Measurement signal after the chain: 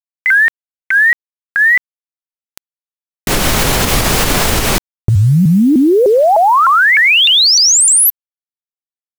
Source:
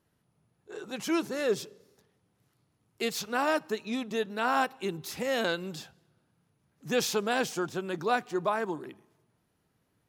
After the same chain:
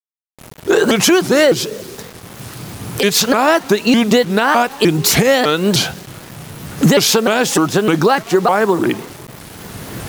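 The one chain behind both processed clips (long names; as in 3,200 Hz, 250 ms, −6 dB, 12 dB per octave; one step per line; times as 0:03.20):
camcorder AGC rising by 14 dB per second
noise gate with hold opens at −57 dBFS
downward compressor 6 to 1, threshold −35 dBFS
bit-depth reduction 10 bits, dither none
boost into a limiter +27 dB
pitch modulation by a square or saw wave saw up 3.3 Hz, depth 250 cents
level −1 dB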